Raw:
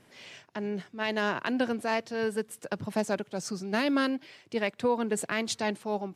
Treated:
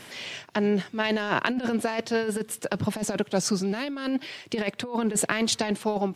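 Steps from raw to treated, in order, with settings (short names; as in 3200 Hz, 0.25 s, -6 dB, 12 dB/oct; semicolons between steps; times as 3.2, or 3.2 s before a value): bell 3300 Hz +2.5 dB 0.77 oct; negative-ratio compressor -31 dBFS, ratio -0.5; mismatched tape noise reduction encoder only; gain +6.5 dB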